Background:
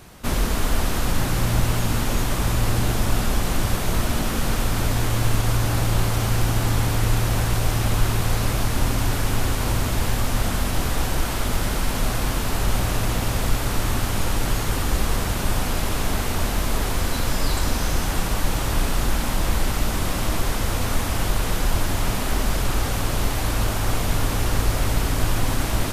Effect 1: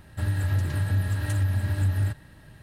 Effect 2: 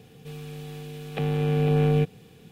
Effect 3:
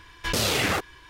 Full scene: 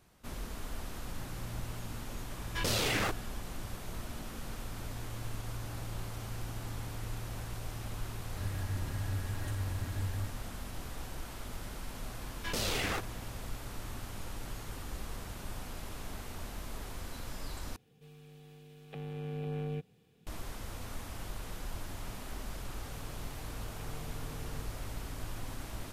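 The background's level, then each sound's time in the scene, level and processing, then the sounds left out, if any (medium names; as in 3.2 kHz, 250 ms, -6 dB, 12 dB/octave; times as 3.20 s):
background -19.5 dB
2.31 s: add 3 -7.5 dB
8.18 s: add 1 -12.5 dB
12.20 s: add 3 -10 dB
17.76 s: replace with 2 -16 dB
22.63 s: add 2 -16.5 dB + compression, threshold -31 dBFS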